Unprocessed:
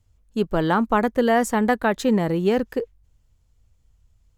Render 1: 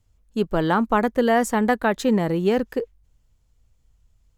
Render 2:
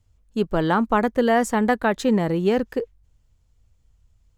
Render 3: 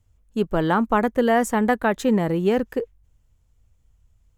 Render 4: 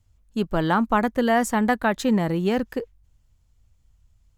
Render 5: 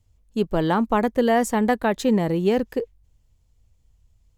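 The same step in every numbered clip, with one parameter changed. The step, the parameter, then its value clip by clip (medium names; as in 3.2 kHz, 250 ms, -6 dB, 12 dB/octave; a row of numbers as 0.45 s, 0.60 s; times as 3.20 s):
peaking EQ, frequency: 83 Hz, 14 kHz, 4.5 kHz, 440 Hz, 1.4 kHz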